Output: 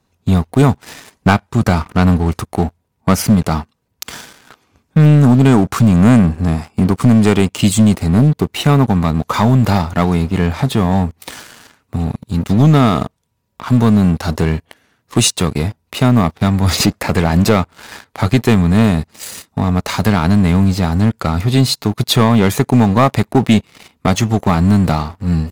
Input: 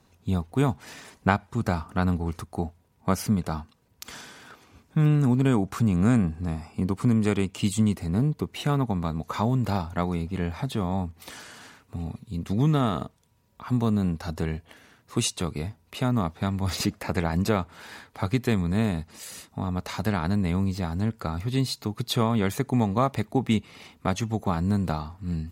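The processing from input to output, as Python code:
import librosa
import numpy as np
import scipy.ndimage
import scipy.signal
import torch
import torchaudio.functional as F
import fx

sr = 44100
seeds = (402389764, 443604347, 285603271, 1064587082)

y = fx.leveller(x, sr, passes=3)
y = y * librosa.db_to_amplitude(3.0)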